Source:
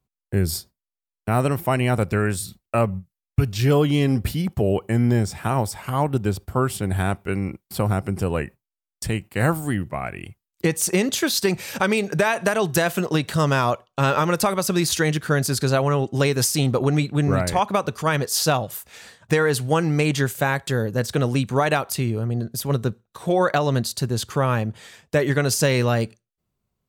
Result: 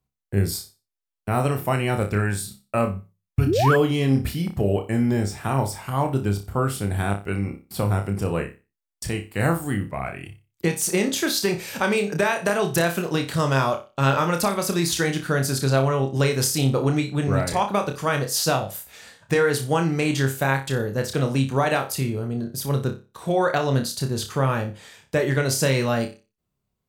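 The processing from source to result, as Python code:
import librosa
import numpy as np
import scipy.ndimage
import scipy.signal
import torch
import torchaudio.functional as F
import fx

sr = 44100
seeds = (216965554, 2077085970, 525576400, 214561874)

y = fx.room_flutter(x, sr, wall_m=5.1, rt60_s=0.29)
y = fx.spec_paint(y, sr, seeds[0], shape='rise', start_s=3.46, length_s=0.3, low_hz=250.0, high_hz=1800.0, level_db=-18.0)
y = y * 10.0 ** (-2.5 / 20.0)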